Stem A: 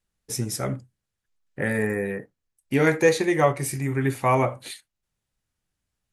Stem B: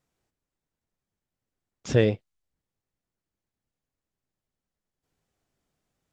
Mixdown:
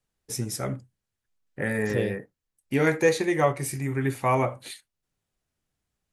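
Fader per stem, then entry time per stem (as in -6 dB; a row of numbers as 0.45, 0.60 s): -2.5, -7.5 dB; 0.00, 0.00 s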